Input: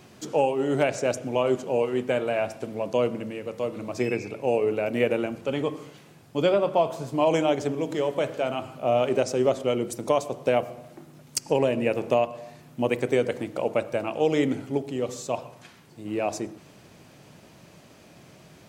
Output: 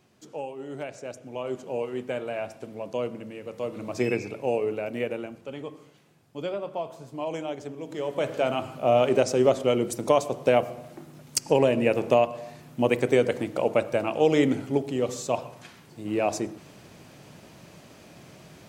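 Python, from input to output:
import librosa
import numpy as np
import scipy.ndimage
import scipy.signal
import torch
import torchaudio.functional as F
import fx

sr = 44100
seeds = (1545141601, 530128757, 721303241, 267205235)

y = fx.gain(x, sr, db=fx.line((1.15, -12.5), (1.71, -6.0), (3.24, -6.0), (4.1, 1.0), (5.51, -10.0), (7.78, -10.0), (8.37, 2.0)))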